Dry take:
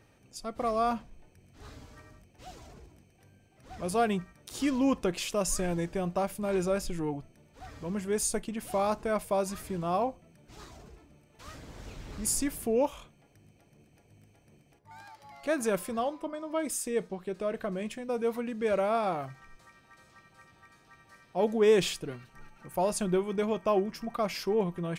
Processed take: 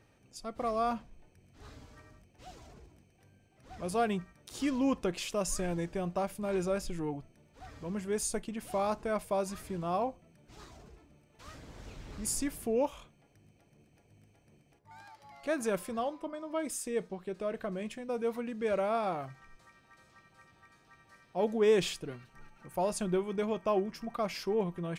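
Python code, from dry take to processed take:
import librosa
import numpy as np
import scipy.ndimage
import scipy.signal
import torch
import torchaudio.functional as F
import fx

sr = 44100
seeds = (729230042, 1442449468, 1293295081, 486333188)

y = fx.high_shelf(x, sr, hz=12000.0, db=-5.5)
y = F.gain(torch.from_numpy(y), -3.0).numpy()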